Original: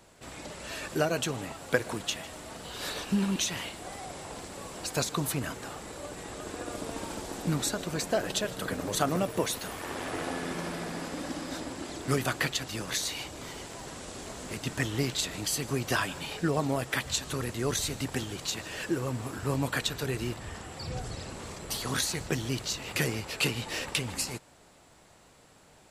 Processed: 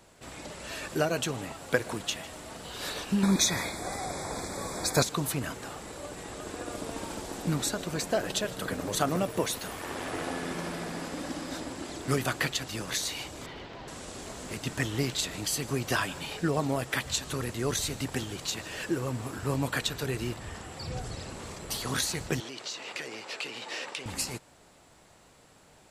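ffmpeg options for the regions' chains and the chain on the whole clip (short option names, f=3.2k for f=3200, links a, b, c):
-filter_complex "[0:a]asettb=1/sr,asplit=3[a][b][c];[a]atrim=end=3.234[d];[b]atrim=start=3.23:end=5.03,asetpts=PTS-STARTPTS,afade=t=in:d=0.004:c=qsin,afade=t=out:st=1.796:d=0.004:c=qsin,acontrast=46,asuperstop=centerf=2900:order=20:qfactor=3.5[e];[c]atrim=start=5.026[f];[d][e]acrossfade=d=0.004:c1=hsin:c2=qsin[g];[g][f]acrossfade=d=0.004:c1=qsin:c2=hsin,asettb=1/sr,asplit=3[h][i][j];[h]atrim=end=13.464[k];[i]atrim=start=13.46:end=13.88,asetpts=PTS-STARTPTS,afade=t=in:d=0.004:c=qsin,afade=t=out:st=0.416:d=0.004:c=qsin,lowpass=f=4.1k:w=0.5412,lowpass=f=4.1k:w=1.3066,asoftclip=type=hard:threshold=-37dB[l];[j]atrim=start=13.876[m];[k][l]acrossfade=d=0.004:c1=hsin:c2=qsin[n];[n][m]acrossfade=d=0.004:c1=qsin:c2=hsin,asettb=1/sr,asplit=3[o][p][q];[o]atrim=end=22.404[r];[p]atrim=start=22.4:end=24.06,asetpts=PTS-STARTPTS,afade=t=in:d=0.004:c=qsin,afade=t=out:st=1.656:d=0.004:c=qsin,acompressor=threshold=-30dB:ratio=10:attack=3.2:release=140:knee=1:detection=peak,highpass=380,lowpass=6.6k[s];[q]atrim=start=24.056[t];[r][s]acrossfade=d=0.004:c1=hsin:c2=qsin[u];[u][t]acrossfade=d=0.004:c1=qsin:c2=hsin"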